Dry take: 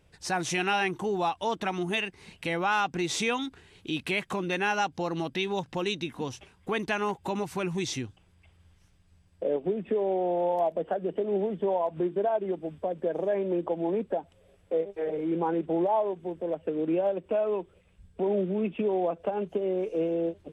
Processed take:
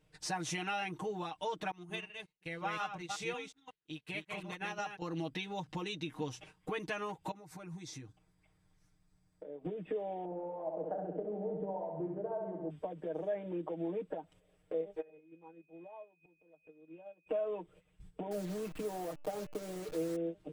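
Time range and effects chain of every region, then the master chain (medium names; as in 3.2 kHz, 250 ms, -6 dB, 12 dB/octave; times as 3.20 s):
1.71–5.02 s: chunks repeated in reverse 181 ms, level -3 dB + peaking EQ 290 Hz -5.5 dB 0.49 oct + upward expansion 2.5:1, over -47 dBFS
7.31–9.65 s: peaking EQ 2.9 kHz -9.5 dB 0.41 oct + compression 3:1, threshold -50 dBFS
10.25–12.70 s: low-pass 1 kHz + flutter echo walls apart 11.4 m, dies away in 0.89 s
15.00–17.26 s: whistle 2.5 kHz -42 dBFS + inverted gate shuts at -32 dBFS, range -27 dB
18.31–20.16 s: send-on-delta sampling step -35 dBFS + de-hum 290.3 Hz, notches 10
whole clip: gate -53 dBFS, range -10 dB; compression 2:1, threshold -47 dBFS; comb 6.5 ms, depth 89%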